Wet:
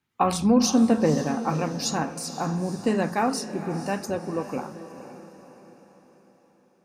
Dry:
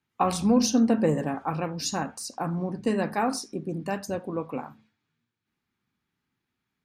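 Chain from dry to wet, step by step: echo that smears into a reverb 497 ms, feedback 48%, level -12 dB; trim +2 dB

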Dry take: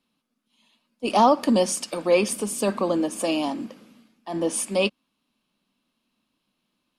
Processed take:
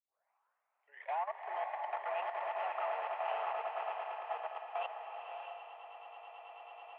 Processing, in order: tape start-up on the opening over 1.55 s; compression 2:1, threshold -36 dBFS, peak gain reduction 13.5 dB; echo with a slow build-up 109 ms, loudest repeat 8, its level -8 dB; saturation -21.5 dBFS, distortion -18 dB; level held to a coarse grid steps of 15 dB; mistuned SSB +140 Hz 570–2400 Hz; swelling reverb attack 620 ms, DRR 3.5 dB; trim -2 dB

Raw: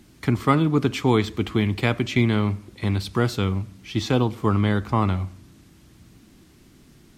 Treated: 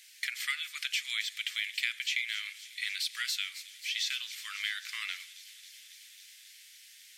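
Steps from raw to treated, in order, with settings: steep high-pass 1.8 kHz 48 dB/octave; compression 3:1, threshold -37 dBFS, peak gain reduction 11 dB; on a send: feedback echo behind a high-pass 272 ms, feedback 81%, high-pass 5.4 kHz, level -9.5 dB; on the sum: trim +6 dB

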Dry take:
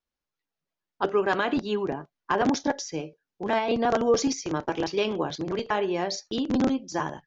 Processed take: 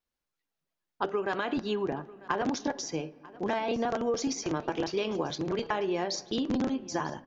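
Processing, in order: compression, threshold -26 dBFS, peak gain reduction 9.5 dB; delay 944 ms -20.5 dB; on a send at -19.5 dB: reverberation RT60 2.7 s, pre-delay 6 ms

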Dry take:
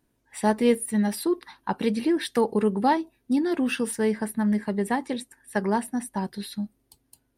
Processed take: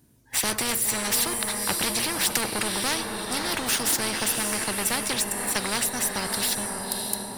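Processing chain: high-pass 74 Hz 12 dB/octave; tone controls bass +11 dB, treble +9 dB; waveshaping leveller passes 2; on a send: echo that smears into a reverb 561 ms, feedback 41%, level -12.5 dB; on the sum: spectrum-flattening compressor 4:1; trim -1.5 dB

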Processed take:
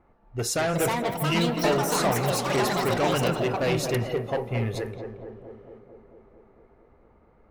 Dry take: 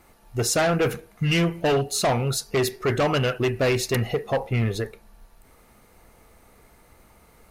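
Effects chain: on a send: tape echo 224 ms, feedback 82%, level -5 dB, low-pass 1.1 kHz; on the sum: level-controlled noise filter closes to 1.2 kHz, open at -22 dBFS; ever faster or slower copies 479 ms, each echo +6 st, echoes 3; trim -4.5 dB

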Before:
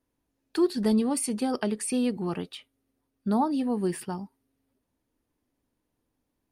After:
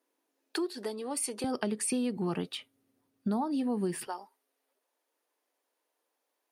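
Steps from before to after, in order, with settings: compression 6:1, threshold -31 dBFS, peak gain reduction 12.5 dB; high-pass 330 Hz 24 dB/octave, from 1.44 s 100 Hz, from 4.07 s 470 Hz; trim +3 dB

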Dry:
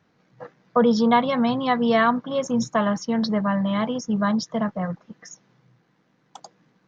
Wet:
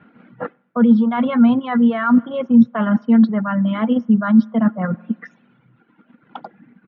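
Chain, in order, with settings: steep low-pass 3.1 kHz 36 dB/octave; in parallel at -0.5 dB: level held to a coarse grid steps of 13 dB; on the sum: bass shelf 170 Hz -7.5 dB; speakerphone echo 90 ms, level -29 dB; reverberation RT60 1.1 s, pre-delay 46 ms, DRR 17.5 dB; reverse; compression 6:1, threshold -29 dBFS, peak gain reduction 16.5 dB; reverse; reverb removal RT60 1.6 s; small resonant body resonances 230/1400 Hz, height 15 dB, ringing for 55 ms; trim +8 dB

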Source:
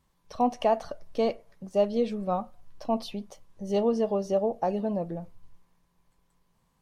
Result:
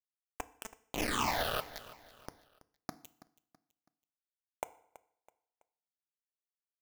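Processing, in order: pre-emphasis filter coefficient 0.8; compression 20:1, threshold -42 dBFS, peak gain reduction 12 dB; painted sound noise, 0.93–1.61 s, 220–1300 Hz -40 dBFS; word length cut 6-bit, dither none; phase shifter stages 8, 0.48 Hz, lowest notch 280–4500 Hz; feedback delay 328 ms, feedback 39%, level -18 dB; FDN reverb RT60 0.67 s, low-frequency decay 0.95×, high-frequency decay 0.85×, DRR 14 dB; trim +9 dB

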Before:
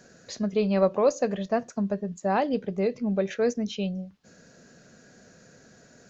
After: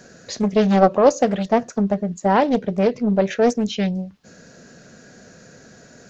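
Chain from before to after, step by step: loudspeaker Doppler distortion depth 0.45 ms; trim +8 dB

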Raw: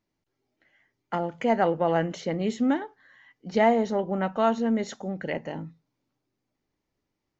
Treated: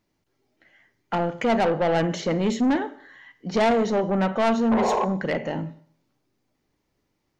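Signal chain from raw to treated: painted sound noise, 4.71–5.05 s, 350–1100 Hz -27 dBFS; Schroeder reverb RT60 0.55 s, combs from 31 ms, DRR 13.5 dB; saturation -23.5 dBFS, distortion -9 dB; trim +7 dB

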